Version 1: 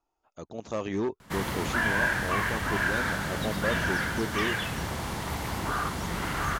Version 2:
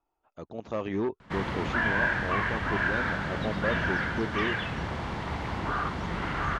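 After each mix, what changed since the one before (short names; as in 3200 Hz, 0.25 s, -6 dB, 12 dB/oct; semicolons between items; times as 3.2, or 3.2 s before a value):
master: add LPF 3200 Hz 12 dB/oct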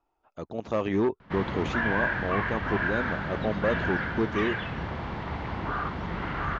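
speech +4.5 dB; background: add air absorption 160 m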